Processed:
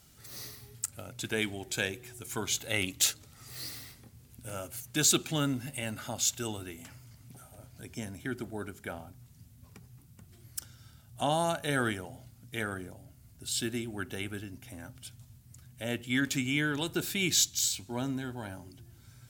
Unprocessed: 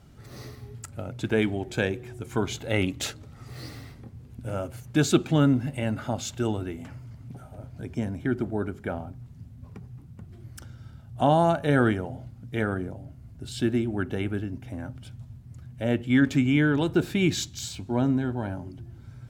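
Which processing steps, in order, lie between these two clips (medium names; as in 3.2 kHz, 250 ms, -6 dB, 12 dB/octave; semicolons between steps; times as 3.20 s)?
pre-emphasis filter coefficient 0.9; trim +9 dB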